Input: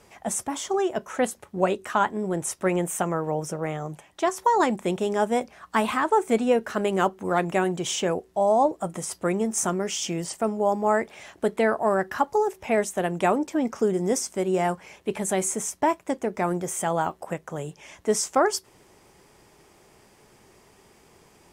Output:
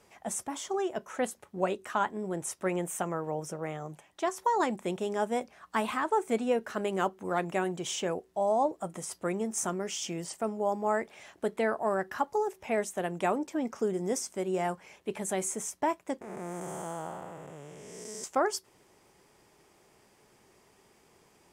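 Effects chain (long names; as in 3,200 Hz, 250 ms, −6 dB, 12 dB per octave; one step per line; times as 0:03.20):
0:16.21–0:18.24: spectrum smeared in time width 447 ms
low-shelf EQ 100 Hz −6 dB
level −6.5 dB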